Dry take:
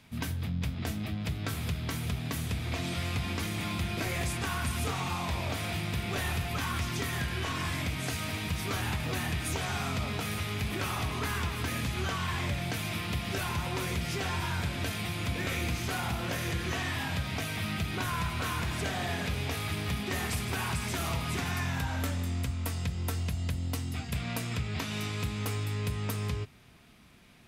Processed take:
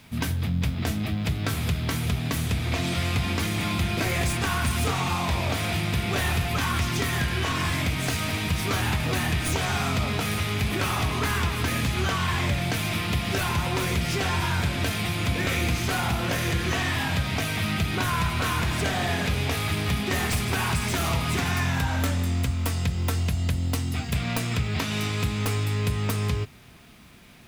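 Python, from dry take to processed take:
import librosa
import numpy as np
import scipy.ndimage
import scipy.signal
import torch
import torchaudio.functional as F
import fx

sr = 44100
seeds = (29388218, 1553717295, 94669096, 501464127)

y = fx.tracing_dist(x, sr, depth_ms=0.037)
y = fx.quant_dither(y, sr, seeds[0], bits=12, dither='triangular')
y = F.gain(torch.from_numpy(y), 7.0).numpy()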